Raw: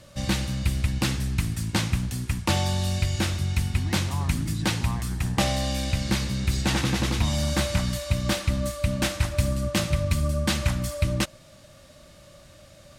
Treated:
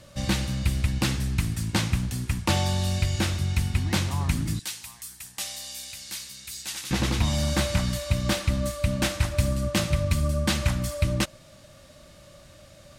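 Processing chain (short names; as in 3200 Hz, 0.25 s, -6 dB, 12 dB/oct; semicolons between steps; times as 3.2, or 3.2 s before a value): 4.59–6.91 pre-emphasis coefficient 0.97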